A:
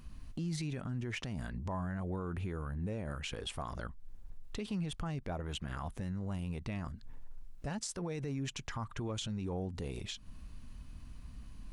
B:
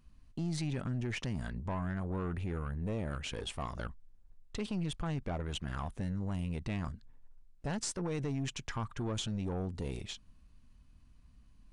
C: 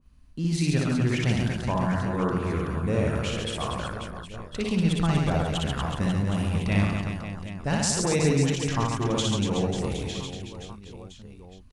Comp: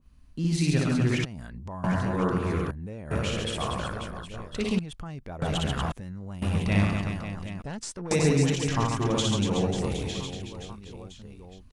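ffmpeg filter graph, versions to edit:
-filter_complex "[0:a]asplit=4[a][b][c][d];[2:a]asplit=6[e][f][g][h][i][j];[e]atrim=end=1.252[k];[a]atrim=start=1.248:end=1.842[l];[f]atrim=start=1.838:end=2.712[m];[b]atrim=start=2.708:end=3.112[n];[g]atrim=start=3.108:end=4.792[o];[c]atrim=start=4.788:end=5.422[p];[h]atrim=start=5.418:end=5.922[q];[d]atrim=start=5.918:end=6.422[r];[i]atrim=start=6.418:end=7.622[s];[1:a]atrim=start=7.618:end=8.112[t];[j]atrim=start=8.108[u];[k][l]acrossfade=d=0.004:c1=hsin:c2=hsin[v];[v][m]acrossfade=d=0.004:c1=hsin:c2=hsin[w];[w][n]acrossfade=d=0.004:c1=hsin:c2=hsin[x];[x][o]acrossfade=d=0.004:c1=hsin:c2=hsin[y];[y][p]acrossfade=d=0.004:c1=hsin:c2=hsin[z];[z][q]acrossfade=d=0.004:c1=hsin:c2=hsin[aa];[aa][r]acrossfade=d=0.004:c1=hsin:c2=hsin[ab];[ab][s]acrossfade=d=0.004:c1=hsin:c2=hsin[ac];[ac][t]acrossfade=d=0.004:c1=hsin:c2=hsin[ad];[ad][u]acrossfade=d=0.004:c1=hsin:c2=hsin"

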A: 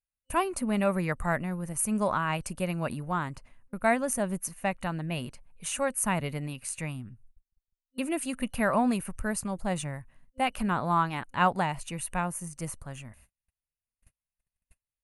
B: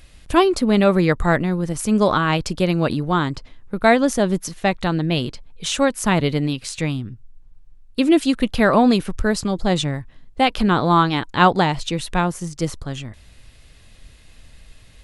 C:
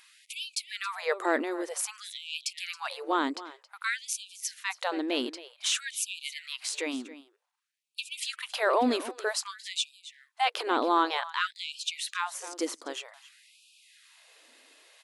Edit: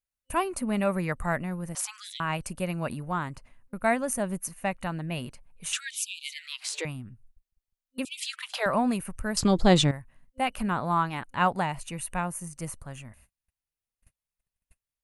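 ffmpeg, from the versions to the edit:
-filter_complex "[2:a]asplit=3[a][b][c];[0:a]asplit=5[d][e][f][g][h];[d]atrim=end=1.752[i];[a]atrim=start=1.748:end=2.202[j];[e]atrim=start=2.198:end=5.732[k];[b]atrim=start=5.728:end=6.852[l];[f]atrim=start=6.848:end=8.052[m];[c]atrim=start=8.048:end=8.662[n];[g]atrim=start=8.658:end=9.372[o];[1:a]atrim=start=9.368:end=9.912[p];[h]atrim=start=9.908[q];[i][j]acrossfade=d=0.004:c1=hsin:c2=hsin[r];[r][k]acrossfade=d=0.004:c1=hsin:c2=hsin[s];[s][l]acrossfade=d=0.004:c1=hsin:c2=hsin[t];[t][m]acrossfade=d=0.004:c1=hsin:c2=hsin[u];[u][n]acrossfade=d=0.004:c1=hsin:c2=hsin[v];[v][o]acrossfade=d=0.004:c1=hsin:c2=hsin[w];[w][p]acrossfade=d=0.004:c1=hsin:c2=hsin[x];[x][q]acrossfade=d=0.004:c1=hsin:c2=hsin"

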